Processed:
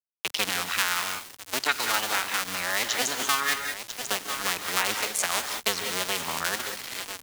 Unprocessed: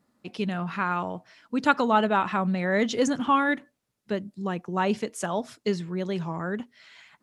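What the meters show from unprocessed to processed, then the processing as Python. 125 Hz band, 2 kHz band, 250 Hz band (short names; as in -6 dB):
-14.5 dB, +4.0 dB, -15.5 dB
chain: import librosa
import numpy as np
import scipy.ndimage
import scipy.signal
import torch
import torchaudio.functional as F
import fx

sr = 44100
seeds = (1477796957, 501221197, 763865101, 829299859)

y = fx.cycle_switch(x, sr, every=2, mode='muted')
y = scipy.signal.sosfilt(scipy.signal.butter(4, 54.0, 'highpass', fs=sr, output='sos'), y)
y = fx.low_shelf(y, sr, hz=290.0, db=-9.0)
y = fx.echo_feedback(y, sr, ms=994, feedback_pct=26, wet_db=-16.5)
y = fx.rev_gated(y, sr, seeds[0], gate_ms=220, shape='rising', drr_db=7.0)
y = fx.rider(y, sr, range_db=4, speed_s=2.0)
y = fx.tilt_shelf(y, sr, db=-10.0, hz=1300.0)
y = np.where(np.abs(y) >= 10.0 ** (-38.5 / 20.0), y, 0.0)
y = fx.band_squash(y, sr, depth_pct=70)
y = y * librosa.db_to_amplitude(1.0)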